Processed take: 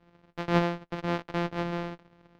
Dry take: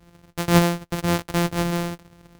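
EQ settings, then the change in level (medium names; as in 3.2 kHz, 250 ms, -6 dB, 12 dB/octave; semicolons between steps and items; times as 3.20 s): distance through air 250 m; peaking EQ 66 Hz -14.5 dB 2 oct; -4.5 dB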